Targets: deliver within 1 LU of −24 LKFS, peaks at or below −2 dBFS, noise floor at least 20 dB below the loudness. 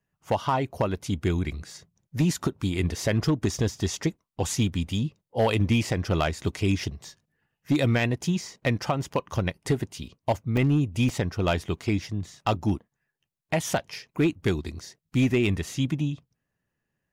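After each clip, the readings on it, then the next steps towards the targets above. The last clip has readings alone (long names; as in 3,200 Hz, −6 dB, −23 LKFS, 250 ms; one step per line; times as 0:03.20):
share of clipped samples 0.7%; peaks flattened at −15.5 dBFS; number of dropouts 2; longest dropout 3.9 ms; integrated loudness −27.0 LKFS; sample peak −15.5 dBFS; target loudness −24.0 LKFS
→ clipped peaks rebuilt −15.5 dBFS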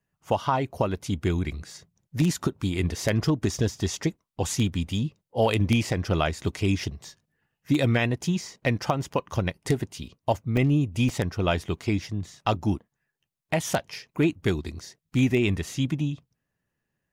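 share of clipped samples 0.0%; number of dropouts 2; longest dropout 3.9 ms
→ repair the gap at 0:10.57/0:11.09, 3.9 ms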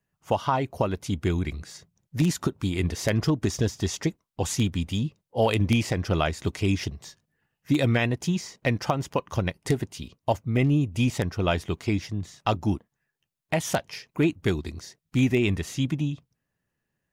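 number of dropouts 0; integrated loudness −27.0 LKFS; sample peak −7.5 dBFS; target loudness −24.0 LKFS
→ level +3 dB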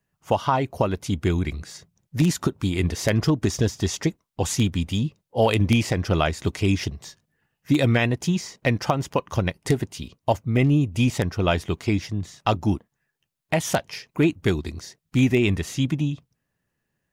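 integrated loudness −24.0 LKFS; sample peak −4.5 dBFS; background noise floor −79 dBFS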